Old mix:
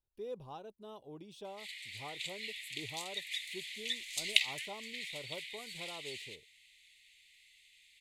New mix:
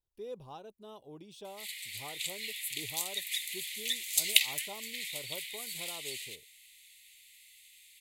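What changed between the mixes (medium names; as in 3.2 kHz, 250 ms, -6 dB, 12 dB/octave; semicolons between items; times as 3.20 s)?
background: remove distance through air 62 m; master: add treble shelf 5 kHz +6 dB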